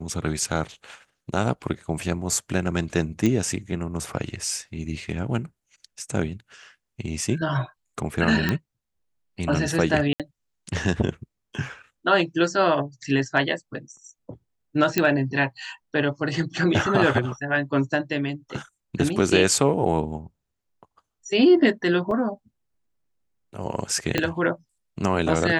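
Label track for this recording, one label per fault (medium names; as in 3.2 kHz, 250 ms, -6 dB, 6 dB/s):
3.260000	3.260000	pop -11 dBFS
8.490000	8.490000	pop -9 dBFS
10.130000	10.200000	dropout 67 ms
14.980000	14.980000	pop -5 dBFS
22.110000	22.110000	dropout 2.7 ms
24.180000	24.180000	pop -7 dBFS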